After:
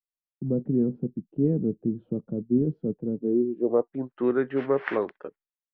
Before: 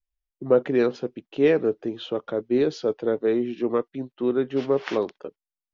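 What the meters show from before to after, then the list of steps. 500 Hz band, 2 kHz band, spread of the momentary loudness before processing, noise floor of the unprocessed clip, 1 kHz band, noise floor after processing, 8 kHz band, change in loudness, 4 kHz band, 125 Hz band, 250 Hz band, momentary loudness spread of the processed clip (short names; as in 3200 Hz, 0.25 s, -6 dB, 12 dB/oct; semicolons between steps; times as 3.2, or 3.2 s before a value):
-5.0 dB, -3.0 dB, 12 LU, under -85 dBFS, -3.0 dB, under -85 dBFS, n/a, -2.5 dB, under -15 dB, +6.5 dB, +1.0 dB, 9 LU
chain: low-pass sweep 190 Hz -> 1800 Hz, 3.13–4.23; vocal rider within 5 dB 0.5 s; expander -52 dBFS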